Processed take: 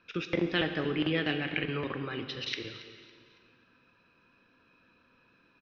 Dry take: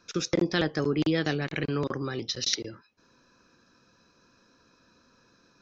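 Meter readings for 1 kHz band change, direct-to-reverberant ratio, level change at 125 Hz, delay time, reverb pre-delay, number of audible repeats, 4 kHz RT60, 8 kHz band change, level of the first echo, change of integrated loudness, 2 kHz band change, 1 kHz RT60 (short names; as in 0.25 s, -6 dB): -3.0 dB, 6.0 dB, -5.0 dB, 0.278 s, 4 ms, 3, 1.8 s, n/a, -18.5 dB, -3.5 dB, +0.5 dB, 1.9 s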